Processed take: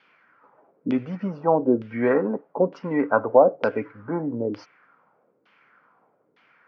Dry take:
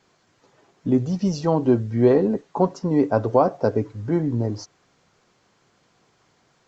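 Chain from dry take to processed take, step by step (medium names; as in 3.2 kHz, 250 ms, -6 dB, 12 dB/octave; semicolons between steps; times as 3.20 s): LFO low-pass saw down 1.1 Hz 370–3400 Hz; cabinet simulation 260–5400 Hz, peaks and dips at 370 Hz -8 dB, 710 Hz -5 dB, 1.4 kHz +7 dB, 2.3 kHz +5 dB, 3.9 kHz -8 dB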